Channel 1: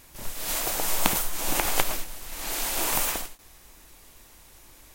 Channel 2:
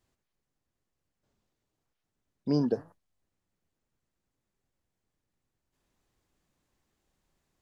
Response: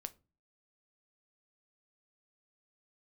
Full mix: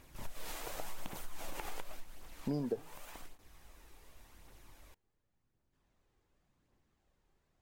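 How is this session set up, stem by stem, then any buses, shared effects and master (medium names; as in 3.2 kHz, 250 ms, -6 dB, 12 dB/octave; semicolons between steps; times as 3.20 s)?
-8.0 dB, 0.00 s, send -8.5 dB, compression 6:1, threshold -30 dBFS, peak gain reduction 14.5 dB; auto duck -13 dB, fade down 0.75 s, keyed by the second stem
+0.5 dB, 0.00 s, no send, none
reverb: on, RT60 0.30 s, pre-delay 7 ms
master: phaser 0.89 Hz, delay 2.6 ms, feedback 33%; treble shelf 4 kHz -10 dB; compression 4:1, threshold -34 dBFS, peak gain reduction 12 dB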